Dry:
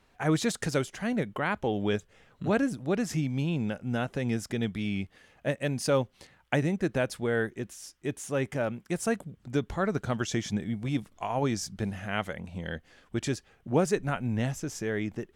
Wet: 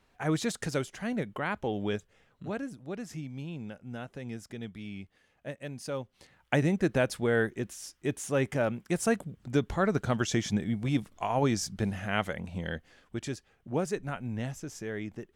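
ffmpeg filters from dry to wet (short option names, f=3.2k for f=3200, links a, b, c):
-af "volume=8.5dB,afade=t=out:st=1.82:d=0.76:silence=0.446684,afade=t=in:st=6.03:d=0.64:silence=0.266073,afade=t=out:st=12.58:d=0.63:silence=0.446684"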